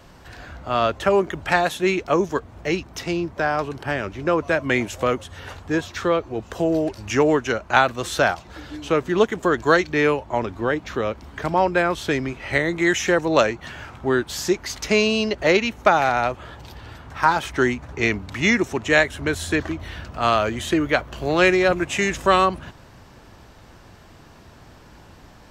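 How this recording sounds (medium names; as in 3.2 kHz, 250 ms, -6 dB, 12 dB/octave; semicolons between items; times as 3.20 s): noise floor -47 dBFS; spectral tilt -3.5 dB/octave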